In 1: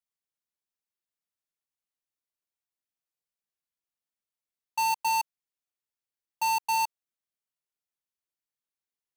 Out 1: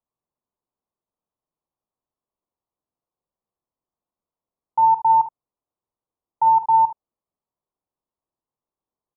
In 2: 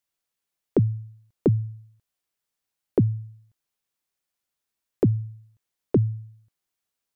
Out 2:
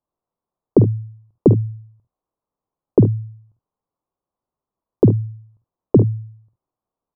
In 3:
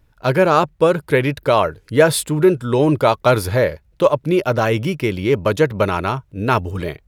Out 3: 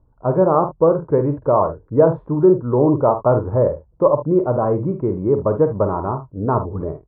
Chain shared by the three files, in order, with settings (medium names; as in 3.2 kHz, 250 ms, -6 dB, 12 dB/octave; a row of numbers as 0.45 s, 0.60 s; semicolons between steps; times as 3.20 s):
Chebyshev low-pass 1.1 kHz, order 4; on a send: early reflections 49 ms -9 dB, 73 ms -15.5 dB; on the sum: normalise loudness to -18 LUFS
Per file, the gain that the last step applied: +11.5 dB, +8.0 dB, -0.5 dB